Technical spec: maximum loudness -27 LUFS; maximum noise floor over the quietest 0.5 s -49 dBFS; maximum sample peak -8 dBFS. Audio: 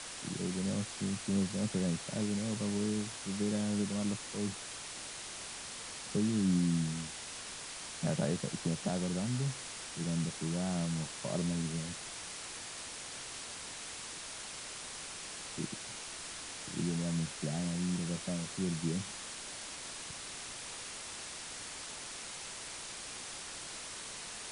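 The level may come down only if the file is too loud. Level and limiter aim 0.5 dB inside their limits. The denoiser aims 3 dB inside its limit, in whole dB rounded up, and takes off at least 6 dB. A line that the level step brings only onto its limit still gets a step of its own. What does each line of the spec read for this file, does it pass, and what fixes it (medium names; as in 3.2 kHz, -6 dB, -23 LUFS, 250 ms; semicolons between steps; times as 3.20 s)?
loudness -37.0 LUFS: pass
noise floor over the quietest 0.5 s -45 dBFS: fail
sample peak -19.5 dBFS: pass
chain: noise reduction 7 dB, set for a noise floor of -45 dBFS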